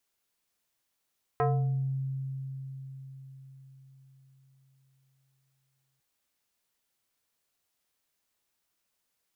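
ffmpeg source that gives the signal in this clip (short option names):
-f lavfi -i "aevalsrc='0.0794*pow(10,-3*t/4.95)*sin(2*PI*134*t+2*pow(10,-3*t/0.67)*sin(2*PI*4.35*134*t))':d=4.6:s=44100"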